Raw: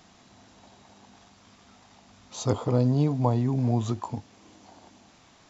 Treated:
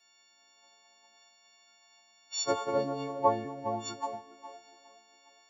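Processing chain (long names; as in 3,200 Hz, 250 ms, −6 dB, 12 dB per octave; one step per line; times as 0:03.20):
every partial snapped to a pitch grid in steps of 4 semitones
in parallel at +1.5 dB: downward compressor, threshold −40 dBFS, peak gain reduction 20 dB
on the sum: three-way crossover with the lows and the highs turned down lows −20 dB, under 350 Hz, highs −12 dB, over 2,400 Hz
delay with a band-pass on its return 411 ms, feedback 58%, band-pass 660 Hz, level −6.5 dB
multiband upward and downward expander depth 100%
level −6 dB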